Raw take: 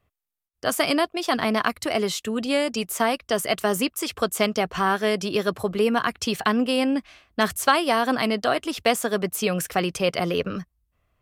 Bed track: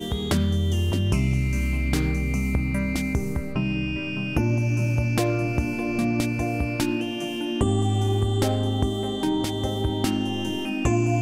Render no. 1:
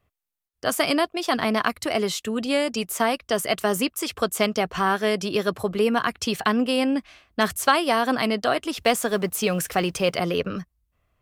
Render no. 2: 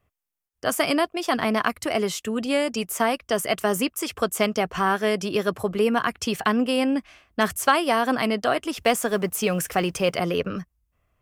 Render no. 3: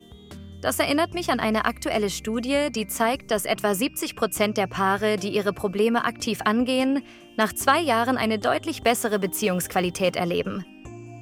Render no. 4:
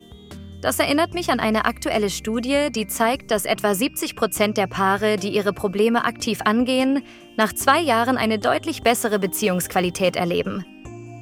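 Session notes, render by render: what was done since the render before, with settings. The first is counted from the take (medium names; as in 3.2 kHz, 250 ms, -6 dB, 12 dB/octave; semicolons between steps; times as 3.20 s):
8.81–10.17 s: companding laws mixed up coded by mu
peaking EQ 4 kHz -6 dB 0.42 oct
add bed track -19 dB
trim +3 dB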